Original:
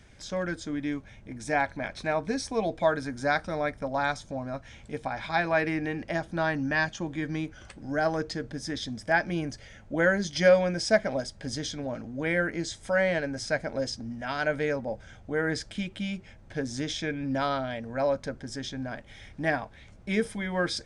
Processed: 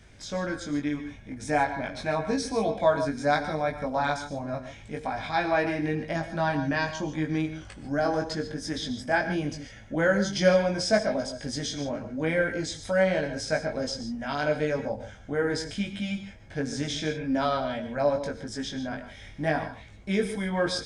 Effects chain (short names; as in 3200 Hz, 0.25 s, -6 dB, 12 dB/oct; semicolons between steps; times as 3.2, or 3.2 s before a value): dynamic EQ 1900 Hz, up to -5 dB, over -41 dBFS, Q 2.1; chorus 0.81 Hz, delay 19 ms, depth 2.1 ms; non-linear reverb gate 0.17 s rising, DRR 9.5 dB; gain +4.5 dB